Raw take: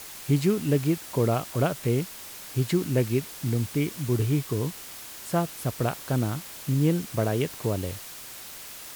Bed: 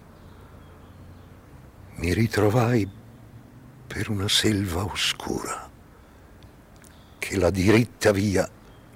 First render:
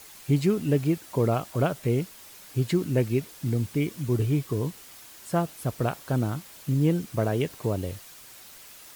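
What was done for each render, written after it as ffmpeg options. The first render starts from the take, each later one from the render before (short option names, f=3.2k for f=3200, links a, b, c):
-af "afftdn=nr=7:nf=-42"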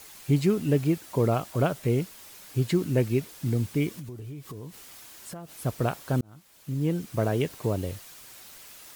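-filter_complex "[0:a]asettb=1/sr,asplit=3[a][b][c];[a]atrim=end=3.994[d];[b]atrim=start=3.99:end=5.62,asetpts=PTS-STARTPTS,afade=t=in:d=0.004:c=qsin,afade=t=out:st=1.626:d=0.004:c=qsin,acompressor=threshold=-36dB:ratio=12:attack=3.2:release=140:knee=1:detection=peak[e];[c]atrim=start=5.616[f];[d][e]acrossfade=d=0.004:c1=hsin:c2=qsin[g];[g][f]acrossfade=d=0.004:c1=qsin:c2=hsin,asplit=2[h][i];[h]atrim=end=6.21,asetpts=PTS-STARTPTS,afade=t=out:st=6.206:d=0.004:c=hsin[j];[i]atrim=start=6.21,asetpts=PTS-STARTPTS,afade=t=in:d=1.04[k];[j][k]concat=n=2:v=0:a=1"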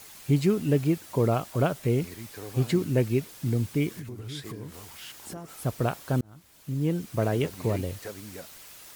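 -filter_complex "[1:a]volume=-20.5dB[a];[0:a][a]amix=inputs=2:normalize=0"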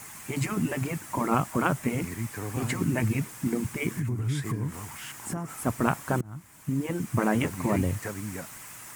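-af "afftfilt=real='re*lt(hypot(re,im),0.316)':imag='im*lt(hypot(re,im),0.316)':win_size=1024:overlap=0.75,equalizer=f=125:t=o:w=1:g=11,equalizer=f=250:t=o:w=1:g=6,equalizer=f=500:t=o:w=1:g=-3,equalizer=f=1k:t=o:w=1:g=8,equalizer=f=2k:t=o:w=1:g=7,equalizer=f=4k:t=o:w=1:g=-8,equalizer=f=8k:t=o:w=1:g=8"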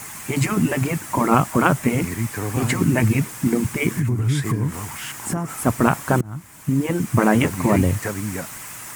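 -af "volume=8.5dB,alimiter=limit=-2dB:level=0:latency=1"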